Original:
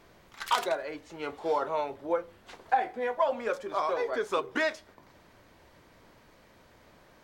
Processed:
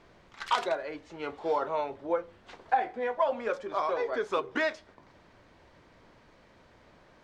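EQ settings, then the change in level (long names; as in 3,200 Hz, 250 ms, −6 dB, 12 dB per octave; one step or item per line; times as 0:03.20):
high-frequency loss of the air 96 metres
high-shelf EQ 9,400 Hz +6 dB
0.0 dB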